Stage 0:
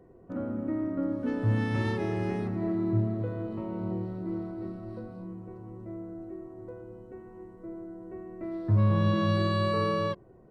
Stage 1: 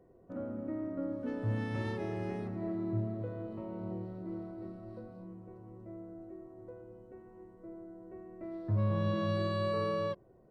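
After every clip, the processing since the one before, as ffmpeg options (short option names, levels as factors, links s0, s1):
-af "equalizer=f=590:w=2.8:g=5,volume=0.422"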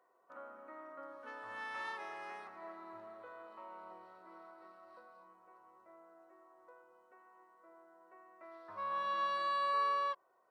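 -af "highpass=f=1100:t=q:w=2.5,volume=0.891"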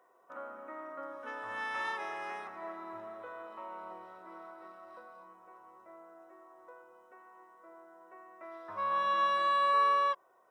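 -af "asuperstop=centerf=4400:order=4:qfactor=6.8,volume=2.11"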